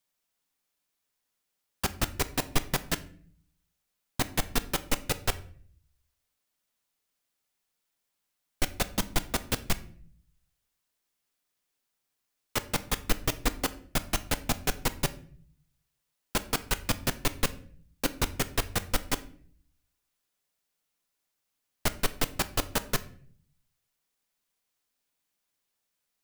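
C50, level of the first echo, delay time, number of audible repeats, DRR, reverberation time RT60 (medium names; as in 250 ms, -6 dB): 17.0 dB, no echo, no echo, no echo, 11.0 dB, 0.50 s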